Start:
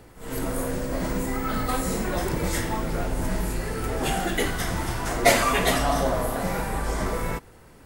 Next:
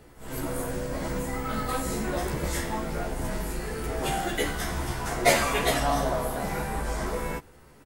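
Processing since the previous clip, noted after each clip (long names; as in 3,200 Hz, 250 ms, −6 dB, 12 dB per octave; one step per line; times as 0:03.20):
double-tracking delay 14 ms −3 dB
level −4.5 dB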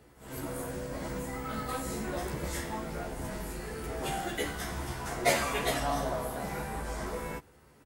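high-pass filter 44 Hz
level −5.5 dB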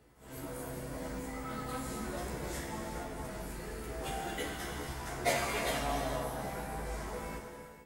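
reverb whose tail is shaped and stops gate 480 ms flat, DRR 2.5 dB
level −5.5 dB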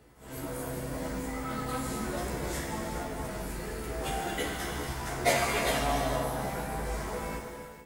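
feedback echo at a low word length 145 ms, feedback 35%, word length 8 bits, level −14 dB
level +5 dB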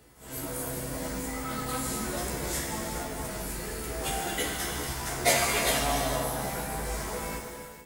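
high-shelf EQ 3,500 Hz +9 dB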